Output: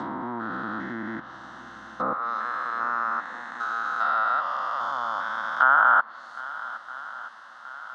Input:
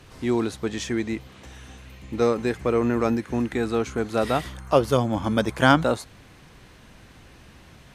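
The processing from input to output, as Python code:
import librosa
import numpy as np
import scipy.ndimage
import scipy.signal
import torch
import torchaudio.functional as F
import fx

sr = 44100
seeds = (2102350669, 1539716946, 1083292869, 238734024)

y = fx.spec_steps(x, sr, hold_ms=400)
y = fx.highpass(y, sr, hz=fx.steps((0.0, 310.0), (2.13, 1200.0)), slope=12)
y = fx.echo_swing(y, sr, ms=1278, ratio=1.5, feedback_pct=54, wet_db=-18.5)
y = fx.env_lowpass_down(y, sr, base_hz=1800.0, full_db=-29.5)
y = scipy.signal.sosfilt(scipy.signal.butter(2, 3400.0, 'lowpass', fs=sr, output='sos'), y)
y = fx.peak_eq(y, sr, hz=1400.0, db=10.5, octaves=0.79)
y = fx.fixed_phaser(y, sr, hz=1000.0, stages=4)
y = F.gain(torch.from_numpy(y), 8.0).numpy()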